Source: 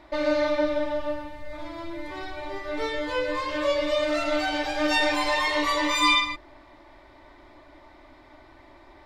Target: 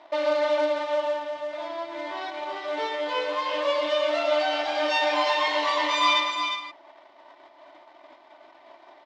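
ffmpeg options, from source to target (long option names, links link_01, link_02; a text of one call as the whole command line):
ffmpeg -i in.wav -filter_complex "[0:a]aeval=exprs='if(lt(val(0),0),0.447*val(0),val(0))':channel_layout=same,agate=range=-33dB:threshold=-43dB:ratio=3:detection=peak,lowshelf=frequency=330:gain=-7.5,acompressor=mode=upward:threshold=-48dB:ratio=2.5,asplit=2[link_01][link_02];[link_02]alimiter=level_in=6dB:limit=-24dB:level=0:latency=1:release=109,volume=-6dB,volume=-3dB[link_03];[link_01][link_03]amix=inputs=2:normalize=0,acrusher=bits=4:mode=log:mix=0:aa=0.000001,highpass=260,equalizer=frequency=670:width_type=q:width=4:gain=10,equalizer=frequency=980:width_type=q:width=4:gain=6,equalizer=frequency=3100:width_type=q:width=4:gain=6,lowpass=frequency=5900:width=0.5412,lowpass=frequency=5900:width=1.3066,asplit=2[link_04][link_05];[link_05]aecho=0:1:355:0.473[link_06];[link_04][link_06]amix=inputs=2:normalize=0,volume=-2dB" out.wav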